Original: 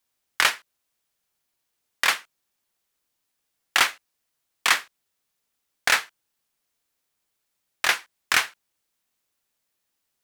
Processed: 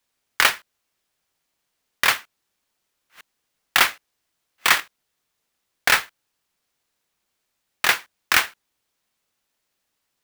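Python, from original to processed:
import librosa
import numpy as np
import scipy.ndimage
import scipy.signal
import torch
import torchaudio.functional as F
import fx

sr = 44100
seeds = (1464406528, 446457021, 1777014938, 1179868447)

y = fx.reverse_delay(x, sr, ms=535, wet_db=-13.0, at=(2.14, 4.8))
y = fx.clock_jitter(y, sr, seeds[0], jitter_ms=0.022)
y = y * librosa.db_to_amplitude(3.0)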